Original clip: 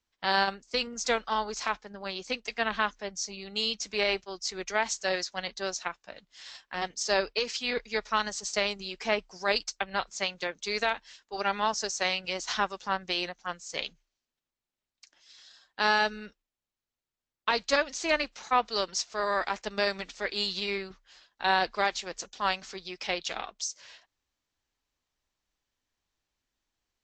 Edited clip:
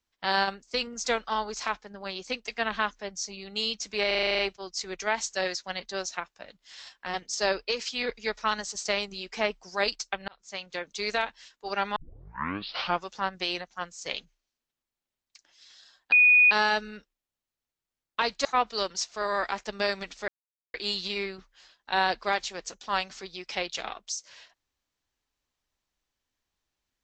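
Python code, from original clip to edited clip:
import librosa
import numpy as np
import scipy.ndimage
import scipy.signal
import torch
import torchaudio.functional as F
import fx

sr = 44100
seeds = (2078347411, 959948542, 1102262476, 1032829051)

y = fx.edit(x, sr, fx.stutter(start_s=4.07, slice_s=0.04, count=9),
    fx.fade_in_span(start_s=9.96, length_s=0.6),
    fx.tape_start(start_s=11.64, length_s=1.12),
    fx.insert_tone(at_s=15.8, length_s=0.39, hz=2470.0, db=-14.5),
    fx.cut(start_s=17.74, length_s=0.69),
    fx.insert_silence(at_s=20.26, length_s=0.46), tone=tone)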